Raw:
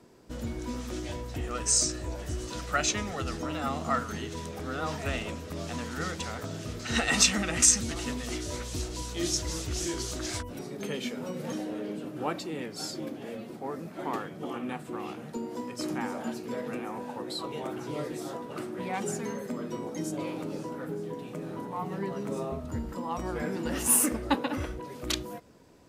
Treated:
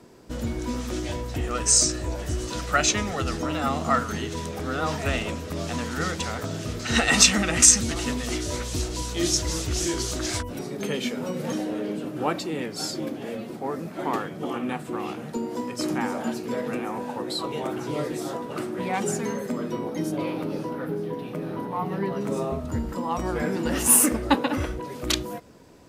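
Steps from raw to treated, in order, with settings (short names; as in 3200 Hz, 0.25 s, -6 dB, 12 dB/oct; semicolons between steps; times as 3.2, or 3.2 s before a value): 19.71–22.21 bell 7400 Hz -11.5 dB 0.59 oct; gain +6 dB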